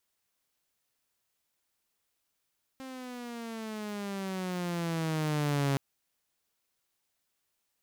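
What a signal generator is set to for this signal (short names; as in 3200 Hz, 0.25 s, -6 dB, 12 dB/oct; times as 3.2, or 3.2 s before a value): gliding synth tone saw, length 2.97 s, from 266 Hz, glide -11.5 st, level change +15.5 dB, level -23 dB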